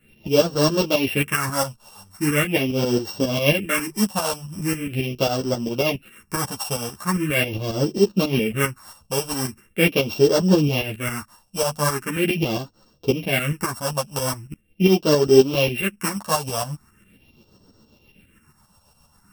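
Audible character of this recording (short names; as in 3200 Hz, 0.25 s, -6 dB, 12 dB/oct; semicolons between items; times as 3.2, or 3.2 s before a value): a buzz of ramps at a fixed pitch in blocks of 16 samples; phasing stages 4, 0.41 Hz, lowest notch 340–2300 Hz; tremolo saw up 7.4 Hz, depth 65%; a shimmering, thickened sound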